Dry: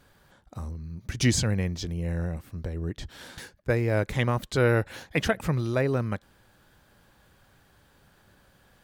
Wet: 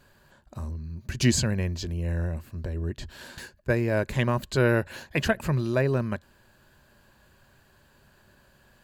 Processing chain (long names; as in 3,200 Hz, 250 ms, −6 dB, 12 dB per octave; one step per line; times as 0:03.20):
EQ curve with evenly spaced ripples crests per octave 1.4, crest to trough 6 dB